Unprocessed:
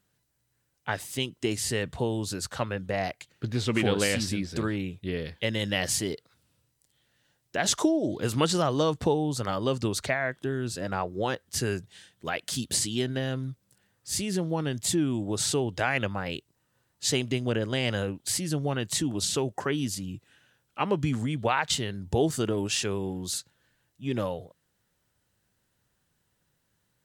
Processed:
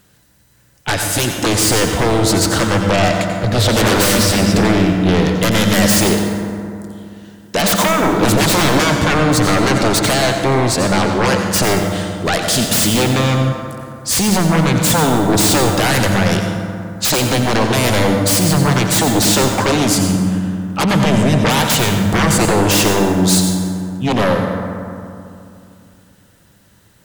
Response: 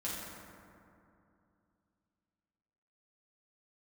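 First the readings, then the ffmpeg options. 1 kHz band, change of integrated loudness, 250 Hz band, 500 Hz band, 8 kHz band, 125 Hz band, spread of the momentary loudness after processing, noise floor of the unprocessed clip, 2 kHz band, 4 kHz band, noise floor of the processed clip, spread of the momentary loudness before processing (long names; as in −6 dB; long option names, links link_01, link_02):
+16.5 dB, +14.5 dB, +15.5 dB, +13.0 dB, +14.5 dB, +15.5 dB, 9 LU, −75 dBFS, +15.0 dB, +14.5 dB, −51 dBFS, 9 LU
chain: -filter_complex "[0:a]aeval=exprs='0.282*sin(PI/2*7.08*val(0)/0.282)':channel_layout=same,asplit=2[link_01][link_02];[1:a]atrim=start_sample=2205,adelay=87[link_03];[link_02][link_03]afir=irnorm=-1:irlink=0,volume=-6dB[link_04];[link_01][link_04]amix=inputs=2:normalize=0,volume=-1dB"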